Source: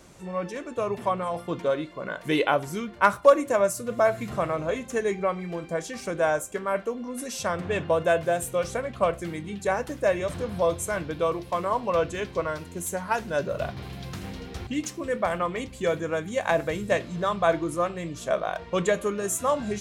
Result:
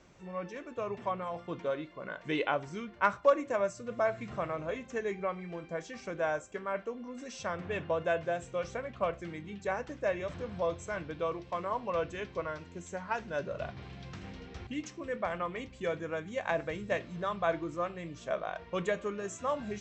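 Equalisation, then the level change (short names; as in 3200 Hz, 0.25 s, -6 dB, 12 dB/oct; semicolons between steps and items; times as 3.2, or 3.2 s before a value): rippled Chebyshev low-pass 7900 Hz, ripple 3 dB; air absorption 82 m; -5.5 dB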